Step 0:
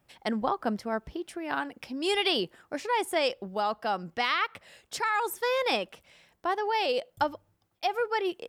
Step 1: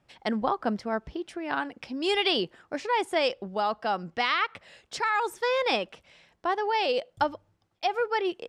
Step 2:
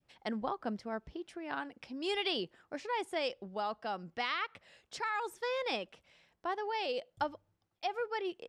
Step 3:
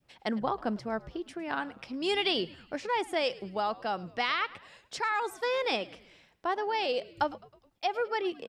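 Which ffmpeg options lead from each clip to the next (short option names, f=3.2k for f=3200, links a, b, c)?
-af "lowpass=6.5k,volume=1.5dB"
-af "adynamicequalizer=threshold=0.0126:dfrequency=1100:dqfactor=0.79:tfrequency=1100:tqfactor=0.79:attack=5:release=100:ratio=0.375:range=2:mode=cutabove:tftype=bell,volume=-8.5dB"
-filter_complex "[0:a]asplit=5[a][b][c][d][e];[b]adelay=106,afreqshift=-81,volume=-20.5dB[f];[c]adelay=212,afreqshift=-162,volume=-26.3dB[g];[d]adelay=318,afreqshift=-243,volume=-32.2dB[h];[e]adelay=424,afreqshift=-324,volume=-38dB[i];[a][f][g][h][i]amix=inputs=5:normalize=0,volume=5.5dB"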